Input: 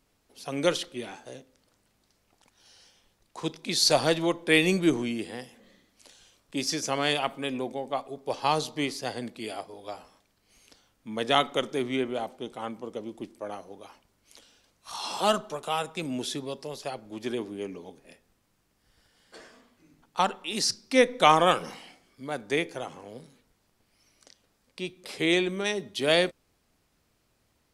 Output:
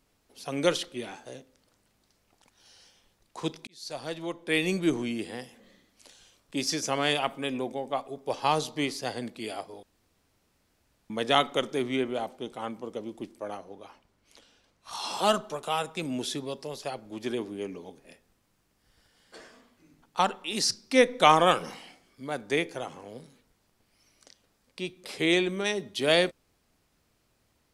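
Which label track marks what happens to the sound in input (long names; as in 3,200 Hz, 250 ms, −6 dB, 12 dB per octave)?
3.670000	5.290000	fade in
6.850000	8.670000	notch filter 4,300 Hz
9.830000	11.100000	fill with room tone
13.570000	14.920000	high-shelf EQ 6,000 Hz −9.5 dB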